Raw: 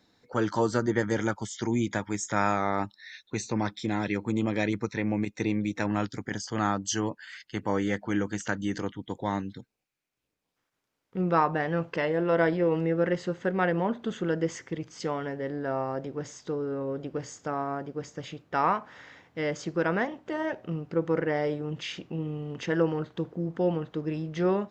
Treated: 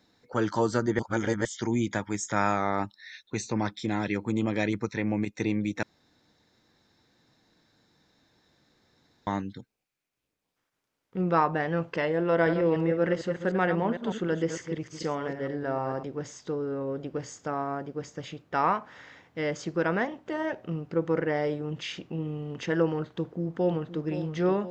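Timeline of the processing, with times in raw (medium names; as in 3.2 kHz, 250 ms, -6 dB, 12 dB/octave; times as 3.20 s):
0.99–1.45 s: reverse
5.83–9.27 s: room tone
12.31–16.03 s: chunks repeated in reverse 151 ms, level -8.5 dB
23.12–24.06 s: echo throw 520 ms, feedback 70%, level -11.5 dB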